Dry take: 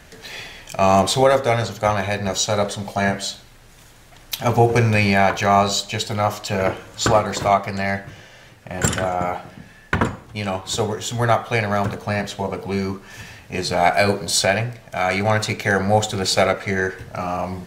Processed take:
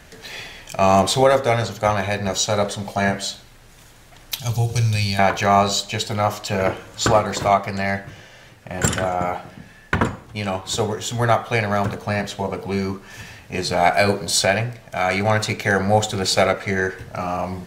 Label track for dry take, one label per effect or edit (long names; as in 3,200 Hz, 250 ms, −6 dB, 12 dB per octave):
4.390000	5.190000	drawn EQ curve 150 Hz 0 dB, 250 Hz −16 dB, 2,000 Hz −13 dB, 3,700 Hz +4 dB